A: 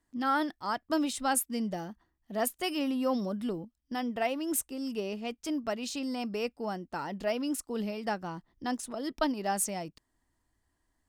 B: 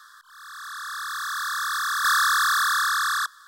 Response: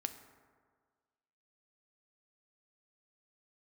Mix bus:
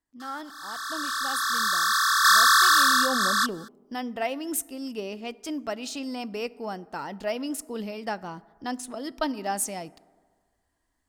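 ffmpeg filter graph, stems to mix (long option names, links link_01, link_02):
-filter_complex "[0:a]volume=-0.5dB,afade=type=in:start_time=2.77:duration=0.4:silence=0.316228,asplit=3[link_01][link_02][link_03];[link_02]volume=-7dB[link_04];[1:a]equalizer=frequency=5100:width=1.5:gain=4,aecho=1:1:4.5:0.8,adelay=200,volume=1dB[link_05];[link_03]apad=whole_len=162471[link_06];[link_05][link_06]sidechaincompress=threshold=-34dB:ratio=8:attack=16:release=128[link_07];[2:a]atrim=start_sample=2205[link_08];[link_04][link_08]afir=irnorm=-1:irlink=0[link_09];[link_01][link_07][link_09]amix=inputs=3:normalize=0,lowshelf=frequency=320:gain=-4"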